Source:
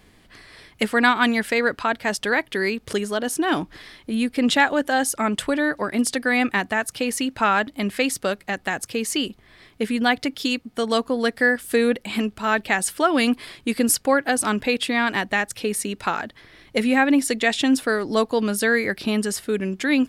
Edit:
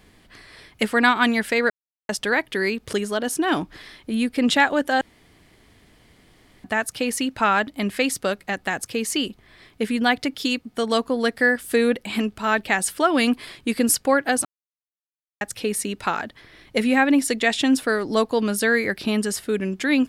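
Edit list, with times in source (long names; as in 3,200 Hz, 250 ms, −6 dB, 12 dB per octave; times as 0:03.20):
0:01.70–0:02.09: silence
0:05.01–0:06.64: fill with room tone
0:14.45–0:15.41: silence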